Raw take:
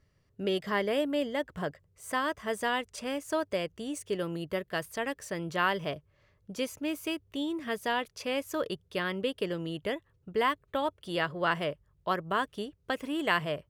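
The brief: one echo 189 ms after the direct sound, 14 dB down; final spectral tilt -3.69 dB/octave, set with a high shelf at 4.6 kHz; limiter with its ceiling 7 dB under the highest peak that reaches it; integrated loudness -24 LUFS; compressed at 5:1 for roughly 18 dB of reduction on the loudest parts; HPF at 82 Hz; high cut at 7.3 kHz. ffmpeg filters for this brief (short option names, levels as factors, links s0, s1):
-af "highpass=82,lowpass=7300,highshelf=f=4600:g=8.5,acompressor=threshold=0.00708:ratio=5,alimiter=level_in=3.55:limit=0.0631:level=0:latency=1,volume=0.282,aecho=1:1:189:0.2,volume=14.1"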